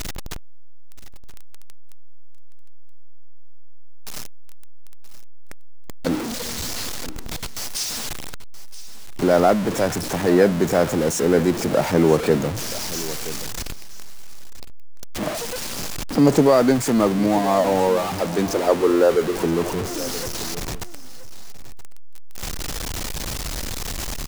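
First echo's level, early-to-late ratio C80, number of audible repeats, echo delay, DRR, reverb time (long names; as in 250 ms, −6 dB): −16.0 dB, no reverb audible, 1, 975 ms, no reverb audible, no reverb audible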